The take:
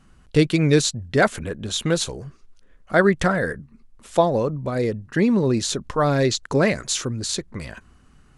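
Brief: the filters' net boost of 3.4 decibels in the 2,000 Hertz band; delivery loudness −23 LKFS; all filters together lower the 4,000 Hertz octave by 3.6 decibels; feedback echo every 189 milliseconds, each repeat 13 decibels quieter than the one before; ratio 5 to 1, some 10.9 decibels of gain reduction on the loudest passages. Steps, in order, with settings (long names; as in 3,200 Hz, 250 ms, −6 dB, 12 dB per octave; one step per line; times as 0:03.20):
parametric band 2,000 Hz +5.5 dB
parametric band 4,000 Hz −5.5 dB
downward compressor 5 to 1, threshold −23 dBFS
repeating echo 189 ms, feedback 22%, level −13 dB
level +5 dB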